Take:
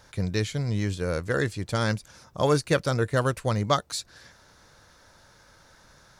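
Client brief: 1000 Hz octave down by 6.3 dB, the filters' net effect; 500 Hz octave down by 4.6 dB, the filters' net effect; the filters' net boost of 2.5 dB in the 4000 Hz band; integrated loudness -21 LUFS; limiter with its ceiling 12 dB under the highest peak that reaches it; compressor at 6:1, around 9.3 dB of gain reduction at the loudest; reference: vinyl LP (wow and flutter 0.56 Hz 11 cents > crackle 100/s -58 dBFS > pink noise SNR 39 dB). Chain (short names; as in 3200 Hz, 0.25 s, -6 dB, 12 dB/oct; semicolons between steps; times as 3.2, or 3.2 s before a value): bell 500 Hz -3.5 dB; bell 1000 Hz -8 dB; bell 4000 Hz +3.5 dB; compressor 6:1, threshold -30 dBFS; limiter -31 dBFS; wow and flutter 0.56 Hz 11 cents; crackle 100/s -58 dBFS; pink noise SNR 39 dB; gain +21 dB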